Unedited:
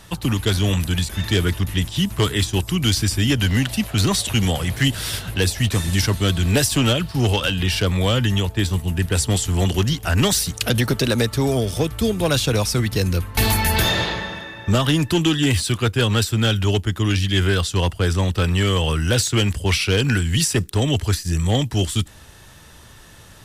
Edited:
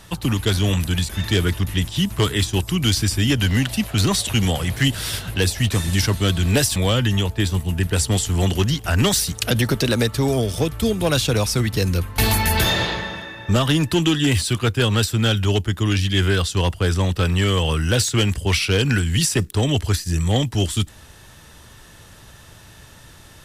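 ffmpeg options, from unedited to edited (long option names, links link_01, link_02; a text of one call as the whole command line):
ffmpeg -i in.wav -filter_complex "[0:a]asplit=2[link_01][link_02];[link_01]atrim=end=6.762[link_03];[link_02]atrim=start=7.948[link_04];[link_03][link_04]acrossfade=duration=0.004:curve1=hsin:curve2=hsin" out.wav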